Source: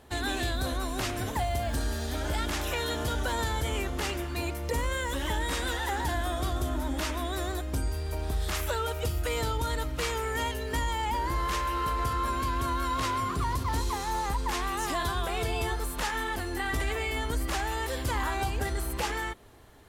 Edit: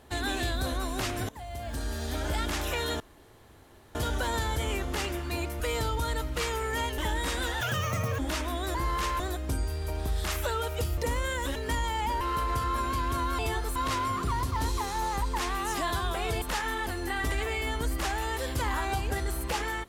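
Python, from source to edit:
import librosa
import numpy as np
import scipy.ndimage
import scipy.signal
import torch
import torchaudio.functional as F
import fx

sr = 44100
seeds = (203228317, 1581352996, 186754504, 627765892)

y = fx.edit(x, sr, fx.fade_in_from(start_s=1.29, length_s=0.84, floor_db=-19.5),
    fx.insert_room_tone(at_s=3.0, length_s=0.95),
    fx.swap(start_s=4.65, length_s=0.58, other_s=9.22, other_length_s=1.38),
    fx.speed_span(start_s=5.86, length_s=1.02, speed=1.77),
    fx.move(start_s=11.25, length_s=0.45, to_s=7.44),
    fx.move(start_s=15.54, length_s=0.37, to_s=12.88), tone=tone)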